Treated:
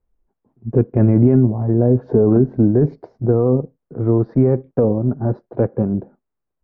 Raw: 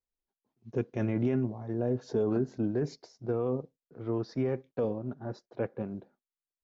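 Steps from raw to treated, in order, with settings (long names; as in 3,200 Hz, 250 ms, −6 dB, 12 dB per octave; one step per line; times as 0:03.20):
in parallel at +1 dB: downward compressor, threshold −37 dBFS, peak gain reduction 12.5 dB
on the sum: low-pass filter 1,300 Hz 12 dB per octave
spectral tilt −2.5 dB per octave
level +8.5 dB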